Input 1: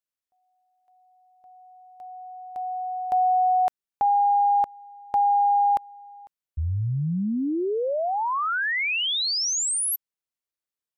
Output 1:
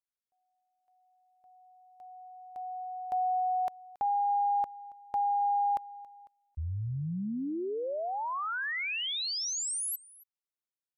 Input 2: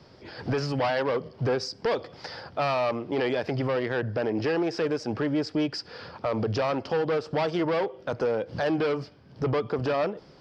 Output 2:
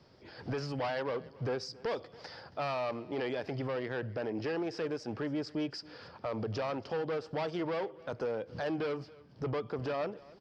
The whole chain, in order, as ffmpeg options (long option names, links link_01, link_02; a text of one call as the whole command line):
ffmpeg -i in.wav -af "aecho=1:1:277:0.0841,volume=-8.5dB" out.wav